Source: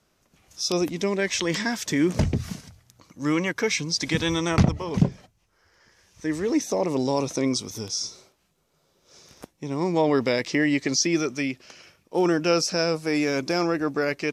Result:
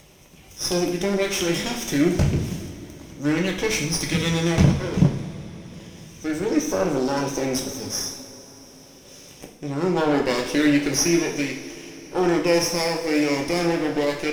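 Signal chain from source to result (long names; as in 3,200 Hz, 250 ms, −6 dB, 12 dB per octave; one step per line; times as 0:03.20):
lower of the sound and its delayed copy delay 0.34 ms
upward compression, threshold −40 dBFS
coupled-rooms reverb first 0.59 s, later 4.8 s, from −18 dB, DRR 0 dB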